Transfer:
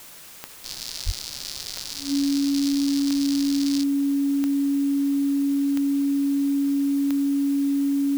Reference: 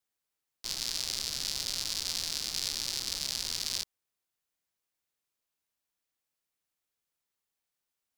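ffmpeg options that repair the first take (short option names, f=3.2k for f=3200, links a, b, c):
-filter_complex "[0:a]adeclick=t=4,bandreject=f=280:w=30,asplit=3[a][b][c];[a]afade=t=out:st=1.05:d=0.02[d];[b]highpass=f=140:w=0.5412,highpass=f=140:w=1.3066,afade=t=in:st=1.05:d=0.02,afade=t=out:st=1.17:d=0.02[e];[c]afade=t=in:st=1.17:d=0.02[f];[d][e][f]amix=inputs=3:normalize=0,afwtdn=0.0063"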